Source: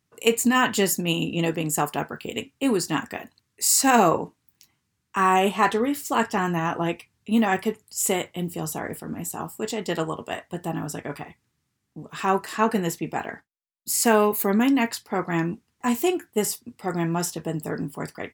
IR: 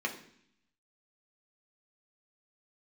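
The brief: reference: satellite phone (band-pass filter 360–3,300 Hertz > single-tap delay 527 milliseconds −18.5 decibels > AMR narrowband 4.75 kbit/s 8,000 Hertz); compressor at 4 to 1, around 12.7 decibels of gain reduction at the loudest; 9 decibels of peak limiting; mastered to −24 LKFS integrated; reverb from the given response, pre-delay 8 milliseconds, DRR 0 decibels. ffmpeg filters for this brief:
-filter_complex "[0:a]acompressor=threshold=-29dB:ratio=4,alimiter=limit=-23dB:level=0:latency=1,asplit=2[link_01][link_02];[1:a]atrim=start_sample=2205,adelay=8[link_03];[link_02][link_03]afir=irnorm=-1:irlink=0,volume=-5.5dB[link_04];[link_01][link_04]amix=inputs=2:normalize=0,highpass=360,lowpass=3300,aecho=1:1:527:0.119,volume=13.5dB" -ar 8000 -c:a libopencore_amrnb -b:a 4750

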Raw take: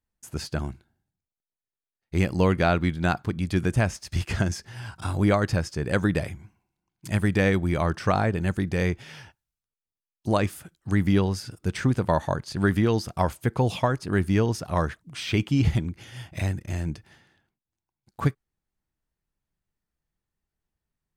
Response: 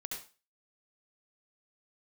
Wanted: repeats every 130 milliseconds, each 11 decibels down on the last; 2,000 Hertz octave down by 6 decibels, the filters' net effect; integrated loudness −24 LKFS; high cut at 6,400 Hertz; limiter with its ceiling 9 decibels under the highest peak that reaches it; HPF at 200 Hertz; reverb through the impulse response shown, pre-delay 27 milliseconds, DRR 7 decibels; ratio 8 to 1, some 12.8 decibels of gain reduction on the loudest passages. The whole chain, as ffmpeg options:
-filter_complex "[0:a]highpass=200,lowpass=6400,equalizer=frequency=2000:width_type=o:gain=-8,acompressor=threshold=-32dB:ratio=8,alimiter=level_in=2.5dB:limit=-24dB:level=0:latency=1,volume=-2.5dB,aecho=1:1:130|260|390:0.282|0.0789|0.0221,asplit=2[link_01][link_02];[1:a]atrim=start_sample=2205,adelay=27[link_03];[link_02][link_03]afir=irnorm=-1:irlink=0,volume=-6.5dB[link_04];[link_01][link_04]amix=inputs=2:normalize=0,volume=15.5dB"

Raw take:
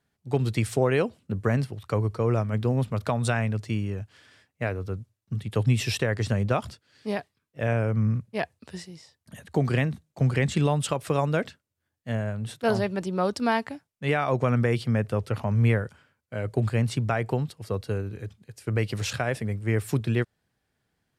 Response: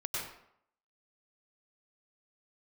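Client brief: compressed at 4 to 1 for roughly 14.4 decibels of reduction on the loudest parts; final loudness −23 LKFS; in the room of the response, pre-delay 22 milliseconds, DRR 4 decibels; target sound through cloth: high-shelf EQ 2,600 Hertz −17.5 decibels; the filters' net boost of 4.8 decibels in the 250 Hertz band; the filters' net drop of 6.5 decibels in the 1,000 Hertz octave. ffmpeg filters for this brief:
-filter_complex "[0:a]equalizer=frequency=250:width_type=o:gain=6.5,equalizer=frequency=1000:width_type=o:gain=-7,acompressor=threshold=-34dB:ratio=4,asplit=2[link_01][link_02];[1:a]atrim=start_sample=2205,adelay=22[link_03];[link_02][link_03]afir=irnorm=-1:irlink=0,volume=-8dB[link_04];[link_01][link_04]amix=inputs=2:normalize=0,highshelf=frequency=2600:gain=-17.5,volume=14dB"

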